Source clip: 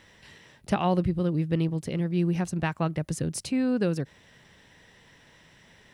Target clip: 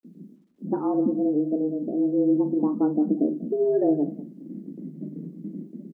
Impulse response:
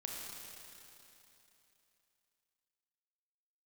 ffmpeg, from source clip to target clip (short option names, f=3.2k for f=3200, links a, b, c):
-filter_complex "[0:a]aeval=exprs='val(0)+0.5*0.0251*sgn(val(0))':c=same,asetnsamples=n=441:p=0,asendcmd='0.87 lowpass f 1000;2.92 lowpass f 2100',lowpass=1.6k,aemphasis=mode=reproduction:type=riaa,afftdn=nr=36:nf=-25,agate=range=-46dB:threshold=-31dB:ratio=16:detection=peak,dynaudnorm=f=460:g=3:m=12dB,afreqshift=150,acrusher=bits=10:mix=0:aa=0.000001,flanger=delay=8.5:depth=5.7:regen=-76:speed=0.68:shape=triangular,asplit=2[a][b];[b]adelay=40,volume=-11dB[c];[a][c]amix=inputs=2:normalize=0,aecho=1:1:191:0.133,volume=-7dB"